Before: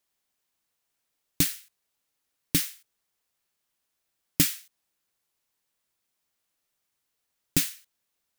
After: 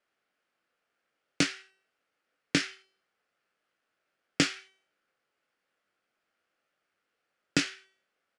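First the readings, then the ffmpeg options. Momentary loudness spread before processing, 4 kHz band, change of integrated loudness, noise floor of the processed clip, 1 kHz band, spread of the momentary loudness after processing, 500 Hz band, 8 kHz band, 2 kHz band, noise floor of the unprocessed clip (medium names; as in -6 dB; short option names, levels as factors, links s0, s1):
11 LU, 0.0 dB, -4.0 dB, -83 dBFS, +8.5 dB, 11 LU, +5.5 dB, -8.0 dB, +5.5 dB, -80 dBFS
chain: -filter_complex "[0:a]acrossover=split=350[s0][s1];[s1]adynamicsmooth=sensitivity=3.5:basefreq=3400[s2];[s0][s2]amix=inputs=2:normalize=0,lowshelf=f=220:g=-10.5,acompressor=threshold=0.0355:ratio=2,highpass=140,equalizer=f=510:t=q:w=4:g=3,equalizer=f=960:t=q:w=4:g=-9,equalizer=f=1400:t=q:w=4:g=6,equalizer=f=3800:t=q:w=4:g=-6,equalizer=f=6100:t=q:w=4:g=-3,lowpass=f=6300:w=0.5412,lowpass=f=6300:w=1.3066,asplit=2[s3][s4];[s4]adelay=21,volume=0.398[s5];[s3][s5]amix=inputs=2:normalize=0,bandreject=f=382.4:t=h:w=4,bandreject=f=764.8:t=h:w=4,bandreject=f=1147.2:t=h:w=4,bandreject=f=1529.6:t=h:w=4,bandreject=f=1912:t=h:w=4,bandreject=f=2294.4:t=h:w=4,bandreject=f=2676.8:t=h:w=4,bandreject=f=3059.2:t=h:w=4,bandreject=f=3441.6:t=h:w=4,bandreject=f=3824:t=h:w=4,bandreject=f=4206.4:t=h:w=4,bandreject=f=4588.8:t=h:w=4,bandreject=f=4971.2:t=h:w=4,bandreject=f=5353.6:t=h:w=4,bandreject=f=5736:t=h:w=4,bandreject=f=6118.4:t=h:w=4,bandreject=f=6500.8:t=h:w=4,bandreject=f=6883.2:t=h:w=4,bandreject=f=7265.6:t=h:w=4,bandreject=f=7648:t=h:w=4,bandreject=f=8030.4:t=h:w=4,bandreject=f=8412.8:t=h:w=4,bandreject=f=8795.2:t=h:w=4,bandreject=f=9177.6:t=h:w=4,bandreject=f=9560:t=h:w=4,bandreject=f=9942.4:t=h:w=4,bandreject=f=10324.8:t=h:w=4,bandreject=f=10707.2:t=h:w=4,bandreject=f=11089.6:t=h:w=4,bandreject=f=11472:t=h:w=4,bandreject=f=11854.4:t=h:w=4,bandreject=f=12236.8:t=h:w=4,bandreject=f=12619.2:t=h:w=4,bandreject=f=13001.6:t=h:w=4,bandreject=f=13384:t=h:w=4,volume=2.51" -ar 22050 -c:a adpcm_ima_wav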